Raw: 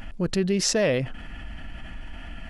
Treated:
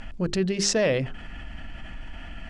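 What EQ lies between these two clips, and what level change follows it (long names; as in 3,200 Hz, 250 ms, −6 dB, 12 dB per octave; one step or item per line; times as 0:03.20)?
low-pass filter 9,000 Hz 24 dB per octave
mains-hum notches 50/100/150/200/250/300/350/400 Hz
0.0 dB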